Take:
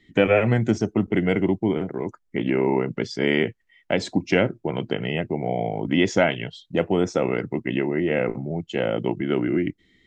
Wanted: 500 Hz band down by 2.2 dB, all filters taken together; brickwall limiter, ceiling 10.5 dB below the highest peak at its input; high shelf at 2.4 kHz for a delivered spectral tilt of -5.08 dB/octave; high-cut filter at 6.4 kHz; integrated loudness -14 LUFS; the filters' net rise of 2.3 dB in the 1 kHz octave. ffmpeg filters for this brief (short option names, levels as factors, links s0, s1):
-af "lowpass=6400,equalizer=f=500:t=o:g=-4,equalizer=f=1000:t=o:g=6.5,highshelf=f=2400:g=-7,volume=5.31,alimiter=limit=0.841:level=0:latency=1"